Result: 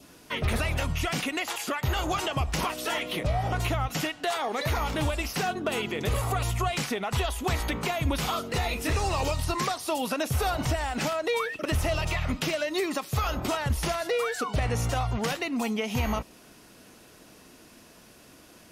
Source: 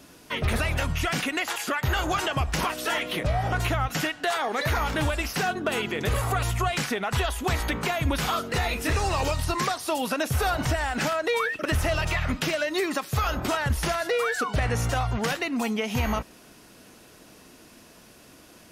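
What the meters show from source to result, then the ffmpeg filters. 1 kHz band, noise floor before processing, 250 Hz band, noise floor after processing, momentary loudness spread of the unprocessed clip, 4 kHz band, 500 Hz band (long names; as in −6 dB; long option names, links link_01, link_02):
−2.5 dB, −52 dBFS, −1.5 dB, −53 dBFS, 2 LU, −2.0 dB, −1.5 dB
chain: -af "adynamicequalizer=threshold=0.00562:dfrequency=1600:dqfactor=2.9:tfrequency=1600:tqfactor=2.9:attack=5:release=100:ratio=0.375:range=3.5:mode=cutabove:tftype=bell,volume=-1.5dB"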